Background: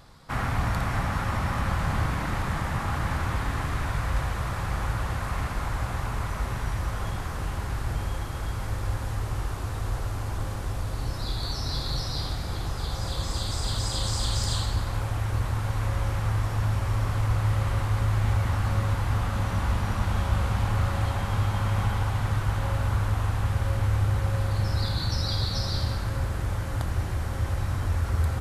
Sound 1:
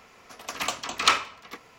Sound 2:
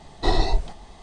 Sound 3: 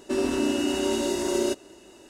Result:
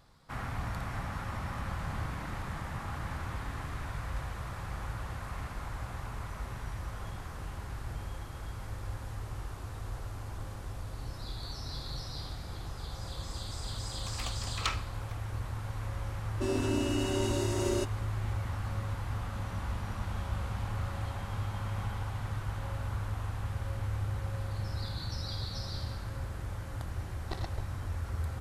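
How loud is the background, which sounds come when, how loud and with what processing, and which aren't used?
background −10 dB
0:13.58: mix in 1 −13 dB
0:16.31: mix in 3 −6.5 dB + one half of a high-frequency compander decoder only
0:27.04: mix in 2 −12 dB + power curve on the samples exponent 3

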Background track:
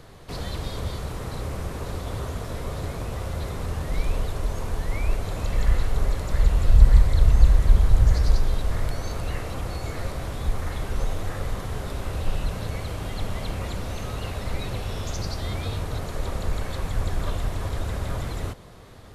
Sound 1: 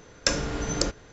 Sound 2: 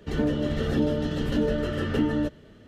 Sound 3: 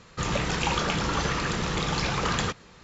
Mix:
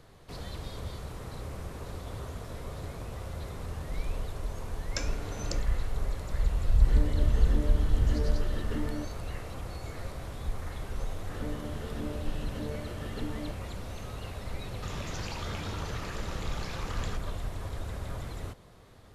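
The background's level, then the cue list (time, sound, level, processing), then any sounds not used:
background track −8.5 dB
0:04.70: mix in 1 −12 dB
0:06.77: mix in 2 −11.5 dB
0:11.23: mix in 2 −14 dB
0:14.65: mix in 3 −6.5 dB + downward compressor, threshold −30 dBFS

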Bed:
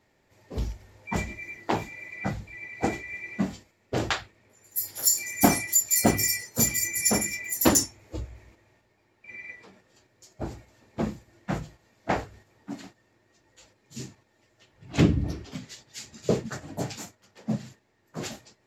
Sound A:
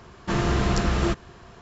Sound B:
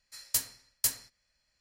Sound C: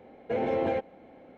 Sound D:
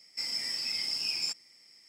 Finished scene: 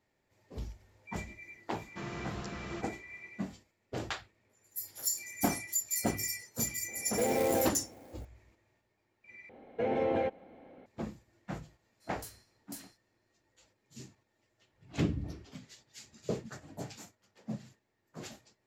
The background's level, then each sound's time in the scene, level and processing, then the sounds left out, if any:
bed −10.5 dB
0:01.68: mix in A −16.5 dB + high-pass filter 100 Hz
0:06.88: mix in C −1.5 dB + converter with an unsteady clock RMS 0.054 ms
0:09.49: overwrite with C −2.5 dB
0:11.88: mix in B −15.5 dB + transient designer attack −6 dB, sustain +4 dB
not used: D

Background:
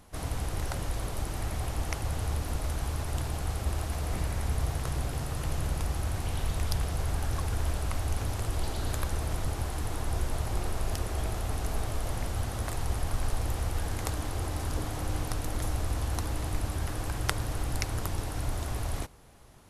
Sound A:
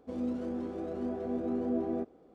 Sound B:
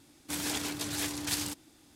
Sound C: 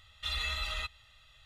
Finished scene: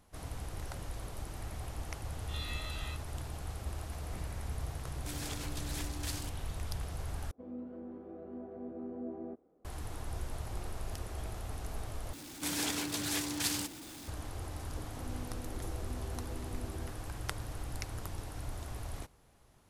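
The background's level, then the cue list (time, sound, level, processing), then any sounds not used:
background −9 dB
0:02.08: mix in C −7.5 dB + spectrum averaged block by block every 50 ms
0:04.76: mix in B −9 dB
0:07.31: overwrite with A −10 dB + low-pass filter 1,700 Hz
0:12.13: overwrite with B −2 dB + converter with a step at zero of −41.5 dBFS
0:14.88: mix in A −10.5 dB + downward compressor, threshold −34 dBFS

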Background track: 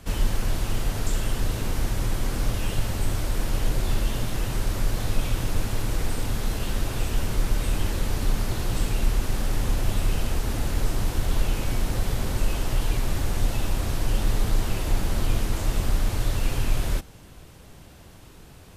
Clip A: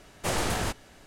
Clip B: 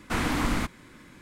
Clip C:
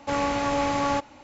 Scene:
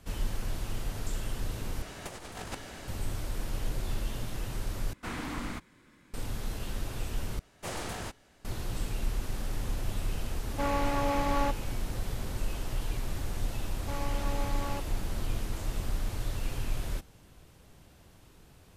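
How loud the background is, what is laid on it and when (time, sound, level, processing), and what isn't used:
background track −9 dB
0:01.82: overwrite with A −1 dB + compressor whose output falls as the input rises −36 dBFS, ratio −0.5
0:04.93: overwrite with B −10 dB
0:07.39: overwrite with A −9 dB
0:10.51: mix in C −5 dB + high-shelf EQ 6,400 Hz −10.5 dB
0:13.80: mix in C −13.5 dB

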